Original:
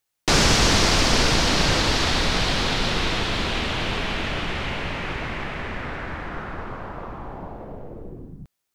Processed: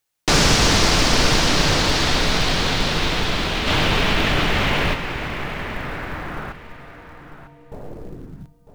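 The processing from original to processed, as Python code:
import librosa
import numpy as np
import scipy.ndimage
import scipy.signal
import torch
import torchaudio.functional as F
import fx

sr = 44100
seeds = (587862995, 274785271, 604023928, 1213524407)

p1 = fx.stiff_resonator(x, sr, f0_hz=140.0, decay_s=0.84, stiffness=0.03, at=(6.52, 7.72))
p2 = fx.echo_feedback(p1, sr, ms=951, feedback_pct=16, wet_db=-12.5)
p3 = fx.quant_float(p2, sr, bits=2)
p4 = p2 + F.gain(torch.from_numpy(p3), -5.0).numpy()
p5 = fx.room_shoebox(p4, sr, seeds[0], volume_m3=2000.0, walls='furnished', distance_m=0.42)
p6 = fx.env_flatten(p5, sr, amount_pct=50, at=(3.66, 4.93), fade=0.02)
y = F.gain(torch.from_numpy(p6), -2.0).numpy()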